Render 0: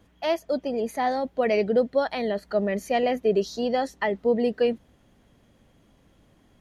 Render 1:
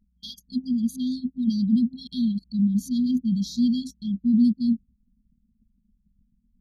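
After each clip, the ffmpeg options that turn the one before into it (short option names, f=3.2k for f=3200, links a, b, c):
-af "afftfilt=real='re*(1-between(b*sr/4096,260,3200))':imag='im*(1-between(b*sr/4096,260,3200))':win_size=4096:overlap=0.75,anlmdn=0.0251,equalizer=f=240:w=1:g=8,volume=2dB"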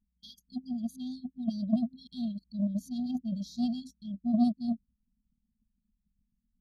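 -af "aeval=exprs='0.282*(cos(1*acos(clip(val(0)/0.282,-1,1)))-cos(1*PI/2))+0.0631*(cos(3*acos(clip(val(0)/0.282,-1,1)))-cos(3*PI/2))+0.00355*(cos(5*acos(clip(val(0)/0.282,-1,1)))-cos(5*PI/2))':c=same,volume=-4dB"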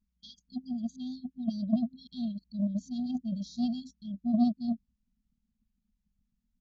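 -af "aresample=16000,aresample=44100"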